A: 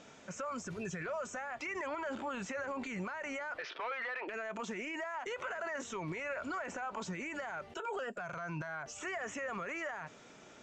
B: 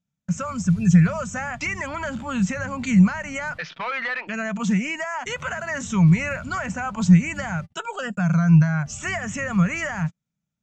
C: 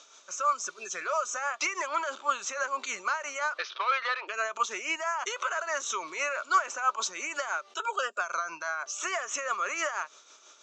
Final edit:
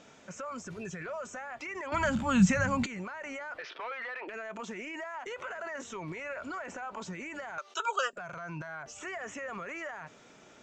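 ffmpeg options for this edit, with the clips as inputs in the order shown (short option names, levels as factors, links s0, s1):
-filter_complex "[0:a]asplit=3[s0][s1][s2];[s0]atrim=end=1.922[s3];[1:a]atrim=start=1.918:end=2.862[s4];[s1]atrim=start=2.858:end=7.582[s5];[2:a]atrim=start=7.578:end=8.132[s6];[s2]atrim=start=8.128[s7];[s3][s4]acrossfade=d=0.004:c1=hsin:c2=hsin[s8];[s8][s5]acrossfade=d=0.004:c1=hsin:c2=hsin[s9];[s9][s6]acrossfade=d=0.004:c1=hsin:c2=hsin[s10];[s10][s7]acrossfade=d=0.004:c1=hsin:c2=hsin"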